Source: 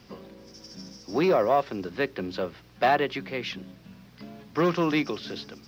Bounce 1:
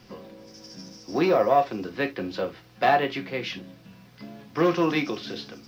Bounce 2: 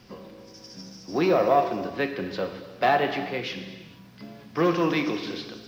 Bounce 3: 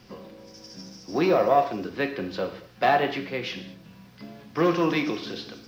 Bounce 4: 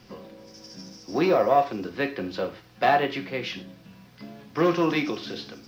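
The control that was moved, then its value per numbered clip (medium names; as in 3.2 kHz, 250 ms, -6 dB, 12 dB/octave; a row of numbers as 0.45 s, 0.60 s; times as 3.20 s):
gated-style reverb, gate: 90 ms, 490 ms, 250 ms, 140 ms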